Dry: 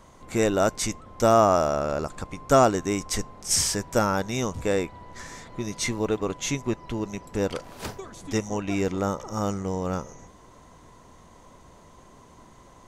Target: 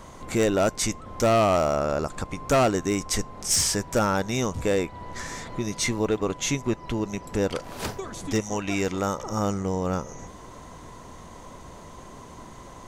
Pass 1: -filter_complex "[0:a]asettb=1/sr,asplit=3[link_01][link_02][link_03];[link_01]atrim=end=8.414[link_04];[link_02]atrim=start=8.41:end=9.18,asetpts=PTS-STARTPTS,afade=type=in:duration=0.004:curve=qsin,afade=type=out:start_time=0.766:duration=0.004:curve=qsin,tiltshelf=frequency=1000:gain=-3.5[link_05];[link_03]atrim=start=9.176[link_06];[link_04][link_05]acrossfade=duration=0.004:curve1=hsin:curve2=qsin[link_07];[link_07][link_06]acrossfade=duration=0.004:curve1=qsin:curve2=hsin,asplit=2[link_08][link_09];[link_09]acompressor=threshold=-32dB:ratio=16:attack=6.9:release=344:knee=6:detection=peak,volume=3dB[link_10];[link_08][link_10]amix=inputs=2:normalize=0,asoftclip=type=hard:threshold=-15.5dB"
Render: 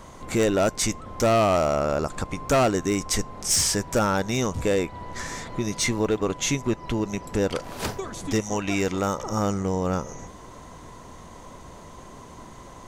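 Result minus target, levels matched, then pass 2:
downward compressor: peak gain reduction −6 dB
-filter_complex "[0:a]asettb=1/sr,asplit=3[link_01][link_02][link_03];[link_01]atrim=end=8.414[link_04];[link_02]atrim=start=8.41:end=9.18,asetpts=PTS-STARTPTS,afade=type=in:duration=0.004:curve=qsin,afade=type=out:start_time=0.766:duration=0.004:curve=qsin,tiltshelf=frequency=1000:gain=-3.5[link_05];[link_03]atrim=start=9.176[link_06];[link_04][link_05]acrossfade=duration=0.004:curve1=hsin:curve2=qsin[link_07];[link_07][link_06]acrossfade=duration=0.004:curve1=qsin:curve2=hsin,asplit=2[link_08][link_09];[link_09]acompressor=threshold=-38.5dB:ratio=16:attack=6.9:release=344:knee=6:detection=peak,volume=3dB[link_10];[link_08][link_10]amix=inputs=2:normalize=0,asoftclip=type=hard:threshold=-15.5dB"

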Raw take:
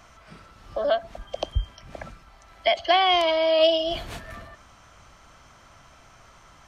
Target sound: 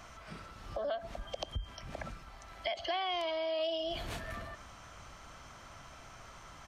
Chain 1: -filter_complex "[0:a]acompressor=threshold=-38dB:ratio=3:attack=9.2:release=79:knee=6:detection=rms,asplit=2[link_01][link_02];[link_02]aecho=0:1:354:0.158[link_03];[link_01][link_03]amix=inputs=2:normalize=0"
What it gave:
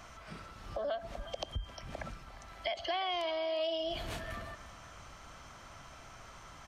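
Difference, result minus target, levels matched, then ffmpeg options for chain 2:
echo-to-direct +9 dB
-filter_complex "[0:a]acompressor=threshold=-38dB:ratio=3:attack=9.2:release=79:knee=6:detection=rms,asplit=2[link_01][link_02];[link_02]aecho=0:1:354:0.0562[link_03];[link_01][link_03]amix=inputs=2:normalize=0"

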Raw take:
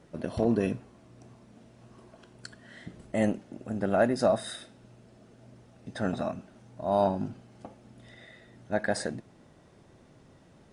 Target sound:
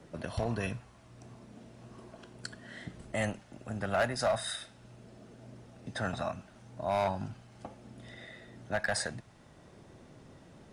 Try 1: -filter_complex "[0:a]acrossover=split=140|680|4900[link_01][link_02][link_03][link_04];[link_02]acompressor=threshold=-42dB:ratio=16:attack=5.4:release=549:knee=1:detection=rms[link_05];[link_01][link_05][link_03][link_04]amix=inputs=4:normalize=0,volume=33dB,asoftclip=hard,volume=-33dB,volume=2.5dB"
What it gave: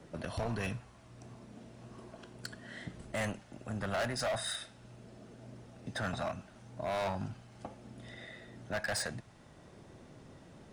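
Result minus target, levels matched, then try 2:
gain into a clipping stage and back: distortion +8 dB
-filter_complex "[0:a]acrossover=split=140|680|4900[link_01][link_02][link_03][link_04];[link_02]acompressor=threshold=-42dB:ratio=16:attack=5.4:release=549:knee=1:detection=rms[link_05];[link_01][link_05][link_03][link_04]amix=inputs=4:normalize=0,volume=25.5dB,asoftclip=hard,volume=-25.5dB,volume=2.5dB"

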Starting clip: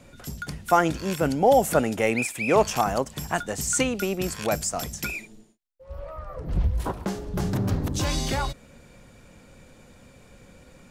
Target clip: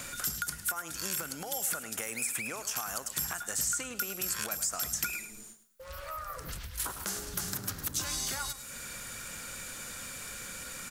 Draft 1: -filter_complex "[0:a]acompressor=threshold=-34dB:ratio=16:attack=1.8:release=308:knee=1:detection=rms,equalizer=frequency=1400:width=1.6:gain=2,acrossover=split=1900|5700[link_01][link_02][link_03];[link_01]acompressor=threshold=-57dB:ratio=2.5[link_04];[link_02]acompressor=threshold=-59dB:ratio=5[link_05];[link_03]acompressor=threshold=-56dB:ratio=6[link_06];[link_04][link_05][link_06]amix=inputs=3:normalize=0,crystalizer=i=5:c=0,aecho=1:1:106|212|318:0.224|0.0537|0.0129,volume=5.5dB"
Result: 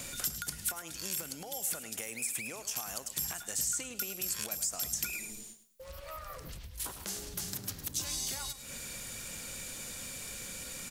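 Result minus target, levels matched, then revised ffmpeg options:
downward compressor: peak gain reduction +9 dB; 1,000 Hz band −5.0 dB
-filter_complex "[0:a]acompressor=threshold=-24.5dB:ratio=16:attack=1.8:release=308:knee=1:detection=rms,equalizer=frequency=1400:width=1.6:gain=12,acrossover=split=1900|5700[link_01][link_02][link_03];[link_01]acompressor=threshold=-57dB:ratio=2.5[link_04];[link_02]acompressor=threshold=-59dB:ratio=5[link_05];[link_03]acompressor=threshold=-56dB:ratio=6[link_06];[link_04][link_05][link_06]amix=inputs=3:normalize=0,crystalizer=i=5:c=0,aecho=1:1:106|212|318:0.224|0.0537|0.0129,volume=5.5dB"

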